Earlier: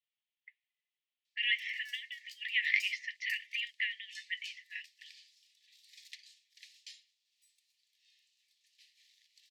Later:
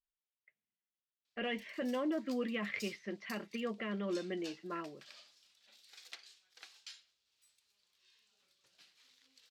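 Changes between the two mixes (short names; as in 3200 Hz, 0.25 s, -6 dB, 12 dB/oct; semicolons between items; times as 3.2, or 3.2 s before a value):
speech -12.0 dB; master: remove brick-wall FIR high-pass 1700 Hz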